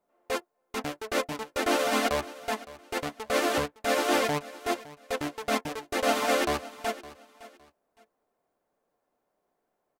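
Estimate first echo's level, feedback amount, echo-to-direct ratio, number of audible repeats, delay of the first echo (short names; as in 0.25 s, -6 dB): -18.0 dB, 26%, -17.5 dB, 2, 0.562 s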